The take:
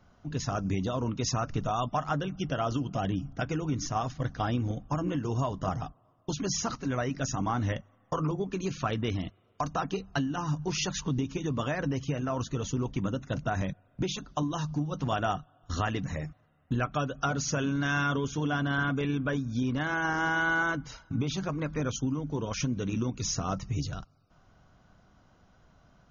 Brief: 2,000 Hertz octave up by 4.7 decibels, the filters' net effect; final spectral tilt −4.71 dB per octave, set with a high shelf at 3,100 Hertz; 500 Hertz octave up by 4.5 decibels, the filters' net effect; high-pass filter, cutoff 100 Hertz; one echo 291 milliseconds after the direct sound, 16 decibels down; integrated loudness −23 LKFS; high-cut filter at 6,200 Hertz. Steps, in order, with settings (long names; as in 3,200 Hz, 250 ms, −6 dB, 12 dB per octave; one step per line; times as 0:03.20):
high-pass filter 100 Hz
low-pass filter 6,200 Hz
parametric band 500 Hz +5.5 dB
parametric band 2,000 Hz +8 dB
high-shelf EQ 3,100 Hz −3.5 dB
single-tap delay 291 ms −16 dB
level +6.5 dB